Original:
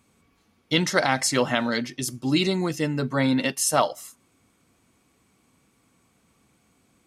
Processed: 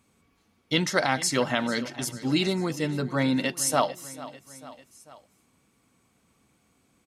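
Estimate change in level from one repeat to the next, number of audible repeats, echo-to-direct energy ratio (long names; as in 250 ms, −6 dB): −4.5 dB, 3, −15.5 dB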